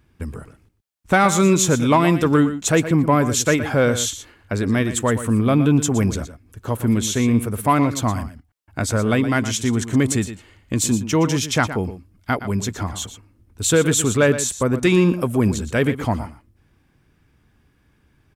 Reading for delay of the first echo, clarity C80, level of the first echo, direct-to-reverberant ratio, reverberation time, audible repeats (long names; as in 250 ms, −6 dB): 118 ms, no reverb audible, −12.0 dB, no reverb audible, no reverb audible, 1